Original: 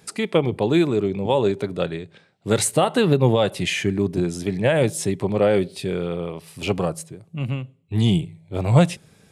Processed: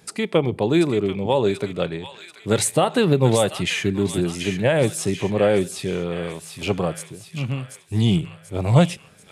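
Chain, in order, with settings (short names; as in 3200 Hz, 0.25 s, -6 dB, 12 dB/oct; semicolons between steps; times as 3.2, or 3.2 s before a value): thin delay 0.736 s, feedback 51%, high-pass 1600 Hz, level -6.5 dB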